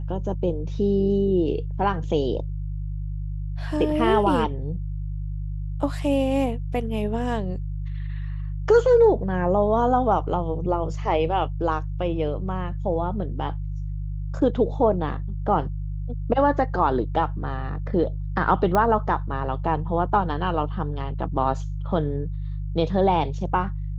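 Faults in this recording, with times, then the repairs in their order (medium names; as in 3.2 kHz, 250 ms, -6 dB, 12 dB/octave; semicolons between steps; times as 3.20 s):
hum 50 Hz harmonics 3 -29 dBFS
18.75 s: pop -10 dBFS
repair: de-click; de-hum 50 Hz, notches 3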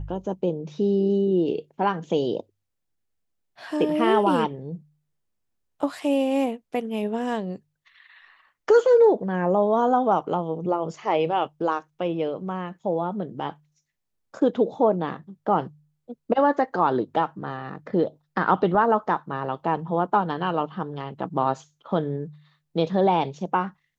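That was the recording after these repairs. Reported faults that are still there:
nothing left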